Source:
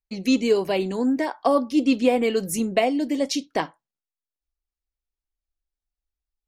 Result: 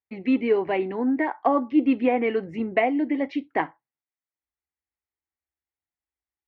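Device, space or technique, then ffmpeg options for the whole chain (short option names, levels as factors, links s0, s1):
bass cabinet: -af "highpass=f=76:w=0.5412,highpass=f=76:w=1.3066,equalizer=f=89:t=q:w=4:g=6,equalizer=f=190:t=q:w=4:g=-6,equalizer=f=330:t=q:w=4:g=4,equalizer=f=560:t=q:w=4:g=-4,equalizer=f=820:t=q:w=4:g=5,equalizer=f=2000:t=q:w=4:g=8,lowpass=f=2400:w=0.5412,lowpass=f=2400:w=1.3066,volume=0.841"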